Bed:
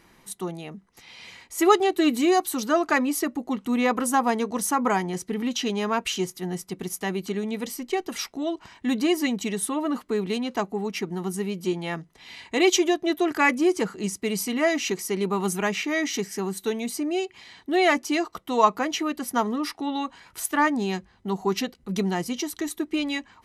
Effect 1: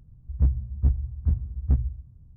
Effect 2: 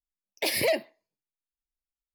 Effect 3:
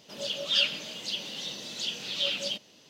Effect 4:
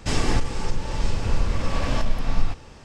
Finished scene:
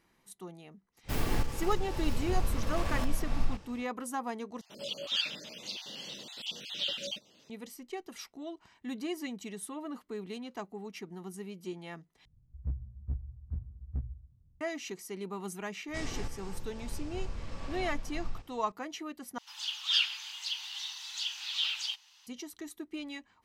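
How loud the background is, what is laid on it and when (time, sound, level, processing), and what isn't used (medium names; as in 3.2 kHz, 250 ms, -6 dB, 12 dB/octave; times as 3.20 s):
bed -14 dB
1.03 s: add 4 -8.5 dB, fades 0.05 s + tracing distortion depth 0.18 ms
4.61 s: replace with 3 -4.5 dB + random holes in the spectrogram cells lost 28%
12.25 s: replace with 1 -14 dB
15.88 s: add 4 -16.5 dB
19.38 s: replace with 3 -2.5 dB + steep high-pass 810 Hz 96 dB/octave
not used: 2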